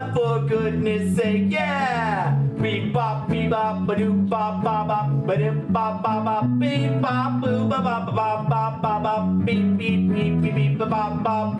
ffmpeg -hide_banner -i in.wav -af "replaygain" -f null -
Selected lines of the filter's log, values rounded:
track_gain = +5.0 dB
track_peak = 0.195